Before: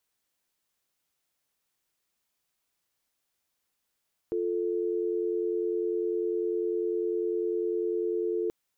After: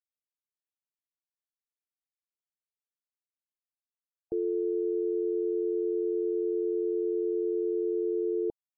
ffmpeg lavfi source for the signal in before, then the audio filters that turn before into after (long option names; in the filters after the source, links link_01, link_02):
-f lavfi -i "aevalsrc='0.0355*(sin(2*PI*350*t)+sin(2*PI*440*t))':duration=4.18:sample_rate=44100"
-af "afftfilt=real='re*gte(hypot(re,im),0.0112)':imag='im*gte(hypot(re,im),0.0112)':win_size=1024:overlap=0.75"